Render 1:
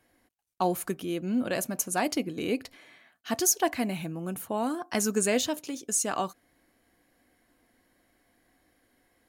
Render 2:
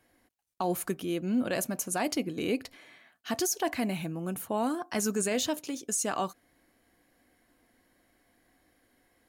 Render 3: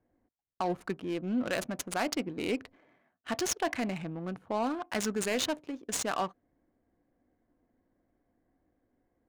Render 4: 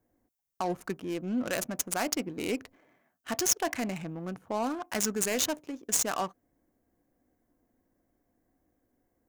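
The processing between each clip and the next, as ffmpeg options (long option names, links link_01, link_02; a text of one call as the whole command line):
ffmpeg -i in.wav -af "alimiter=limit=-20dB:level=0:latency=1:release=16" out.wav
ffmpeg -i in.wav -af "tiltshelf=frequency=900:gain=-3,adynamicsmooth=sensitivity=6:basefreq=610" out.wav
ffmpeg -i in.wav -af "aexciter=amount=3.1:drive=2.7:freq=5500" out.wav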